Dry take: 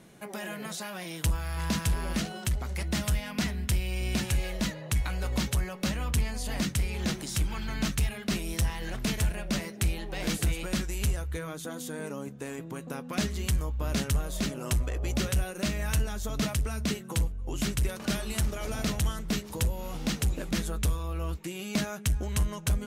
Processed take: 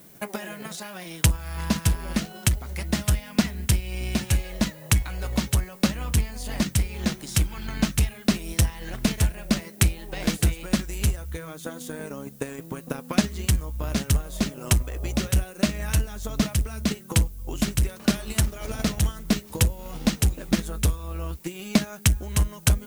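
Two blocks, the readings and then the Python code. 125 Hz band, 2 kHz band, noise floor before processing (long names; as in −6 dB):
+5.5 dB, +3.5 dB, −42 dBFS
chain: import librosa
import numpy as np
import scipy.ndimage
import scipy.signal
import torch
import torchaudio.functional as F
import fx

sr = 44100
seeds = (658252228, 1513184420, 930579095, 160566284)

y = fx.transient(x, sr, attack_db=11, sustain_db=-4)
y = fx.dmg_noise_colour(y, sr, seeds[0], colour='violet', level_db=-52.0)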